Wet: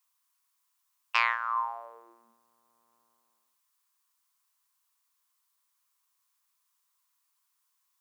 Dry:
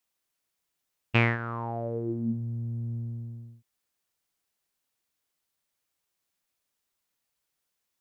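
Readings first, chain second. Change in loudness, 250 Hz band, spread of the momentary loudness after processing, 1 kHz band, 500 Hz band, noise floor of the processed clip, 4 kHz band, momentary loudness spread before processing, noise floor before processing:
+1.5 dB, below −35 dB, 11 LU, +5.5 dB, −16.5 dB, −77 dBFS, +2.0 dB, 15 LU, −82 dBFS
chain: stylus tracing distortion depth 0.023 ms
four-pole ladder high-pass 980 Hz, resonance 75%
high-shelf EQ 3,900 Hz +11 dB
level +7.5 dB

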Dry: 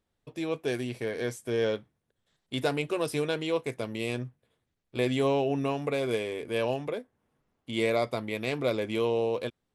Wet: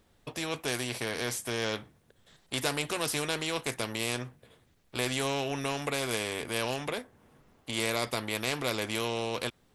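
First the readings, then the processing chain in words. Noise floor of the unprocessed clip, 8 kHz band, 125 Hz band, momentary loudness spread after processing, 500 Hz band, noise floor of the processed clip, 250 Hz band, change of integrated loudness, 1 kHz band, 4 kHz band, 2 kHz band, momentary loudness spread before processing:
−81 dBFS, +11.5 dB, −2.5 dB, 7 LU, −6.0 dB, −67 dBFS, −4.5 dB, −2.0 dB, 0.0 dB, +5.5 dB, +2.5 dB, 9 LU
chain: every bin compressed towards the loudest bin 2 to 1

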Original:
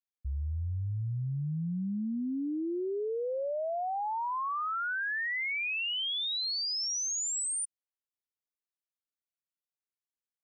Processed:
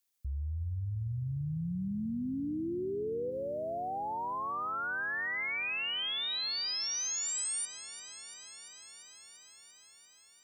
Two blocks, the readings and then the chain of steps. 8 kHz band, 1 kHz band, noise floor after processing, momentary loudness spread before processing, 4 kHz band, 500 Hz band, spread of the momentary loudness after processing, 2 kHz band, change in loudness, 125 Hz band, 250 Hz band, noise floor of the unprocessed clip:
−2.0 dB, −3.0 dB, −61 dBFS, 5 LU, −2.0 dB, −2.5 dB, 17 LU, −2.0 dB, −2.0 dB, −2.0 dB, −2.0 dB, below −85 dBFS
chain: gain on a spectral selection 0:03.30–0:05.37, 220–2,700 Hz −10 dB
high-shelf EQ 3,600 Hz +11 dB
speech leveller within 4 dB
brickwall limiter −34 dBFS, peak gain reduction 10 dB
feedback echo at a low word length 343 ms, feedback 80%, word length 12 bits, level −15 dB
level +2 dB

